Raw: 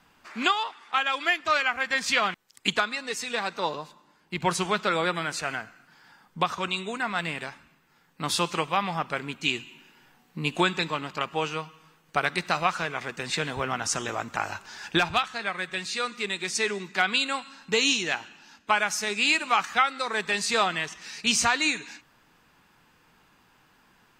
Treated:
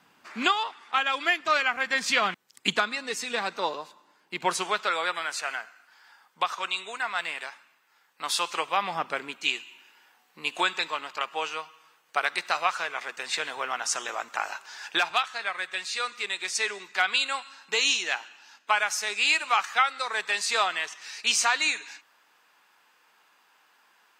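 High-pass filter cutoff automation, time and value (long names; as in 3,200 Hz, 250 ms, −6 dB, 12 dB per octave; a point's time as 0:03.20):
0:03.34 150 Hz
0:03.75 340 Hz
0:04.46 340 Hz
0:04.97 700 Hz
0:08.46 700 Hz
0:09.04 260 Hz
0:09.56 620 Hz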